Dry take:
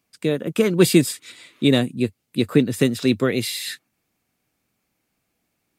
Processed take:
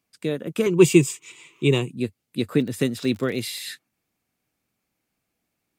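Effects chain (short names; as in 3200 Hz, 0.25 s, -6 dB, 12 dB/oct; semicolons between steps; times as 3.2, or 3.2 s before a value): 0.66–1.9 ripple EQ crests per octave 0.72, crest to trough 14 dB; 2.55–3.63 crackle 27/s -26 dBFS; gain -4.5 dB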